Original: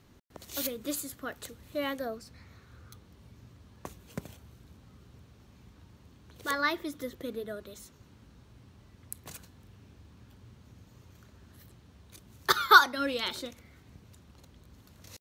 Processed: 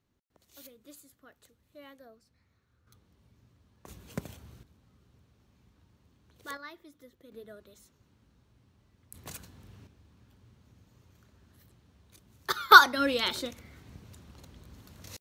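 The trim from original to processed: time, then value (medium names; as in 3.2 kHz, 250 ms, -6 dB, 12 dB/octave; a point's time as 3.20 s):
-18 dB
from 2.87 s -10 dB
from 3.88 s +2 dB
from 4.63 s -9 dB
from 6.57 s -17 dB
from 7.32 s -9.5 dB
from 9.14 s +2 dB
from 9.87 s -6 dB
from 12.72 s +3.5 dB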